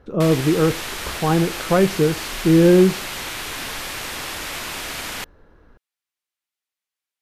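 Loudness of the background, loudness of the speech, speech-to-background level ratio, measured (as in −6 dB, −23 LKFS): −28.0 LKFS, −18.0 LKFS, 10.0 dB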